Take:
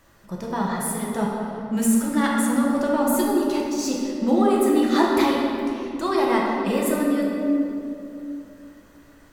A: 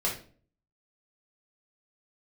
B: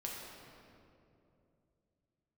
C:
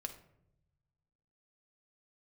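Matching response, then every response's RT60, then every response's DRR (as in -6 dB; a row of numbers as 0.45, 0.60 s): B; 0.45, 2.7, 0.80 s; -4.0, -3.5, 5.0 dB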